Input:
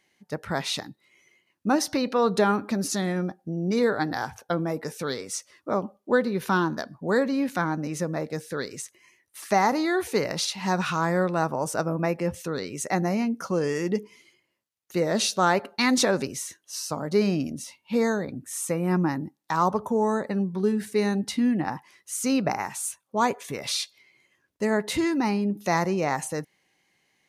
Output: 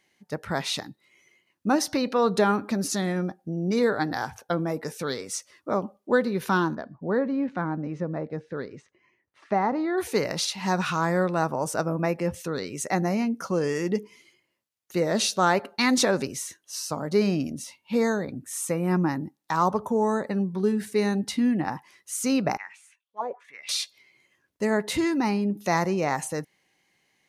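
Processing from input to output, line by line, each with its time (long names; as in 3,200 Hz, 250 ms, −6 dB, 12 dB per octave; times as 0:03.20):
0:06.75–0:09.98: head-to-tape spacing loss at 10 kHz 38 dB
0:22.57–0:23.69: envelope filter 550–4,100 Hz, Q 4.4, down, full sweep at −18.5 dBFS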